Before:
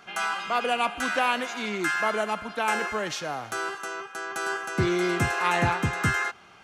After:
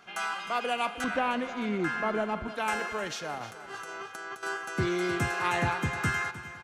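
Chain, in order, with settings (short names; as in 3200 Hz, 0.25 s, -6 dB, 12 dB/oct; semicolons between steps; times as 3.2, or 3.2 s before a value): 1.04–2.48 RIAA curve playback; 3.38–4.43 negative-ratio compressor -36 dBFS, ratio -0.5; on a send: feedback echo 0.308 s, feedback 57%, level -15 dB; on the sum: gain -4.5 dB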